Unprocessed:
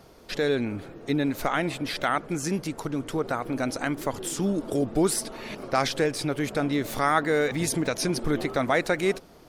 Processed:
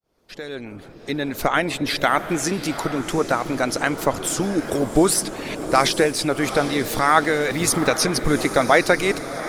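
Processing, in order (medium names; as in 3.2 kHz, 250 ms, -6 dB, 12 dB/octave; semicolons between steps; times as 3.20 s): fade-in on the opening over 1.69 s; harmonic-percussive split percussive +9 dB; echo that smears into a reverb 780 ms, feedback 49%, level -11.5 dB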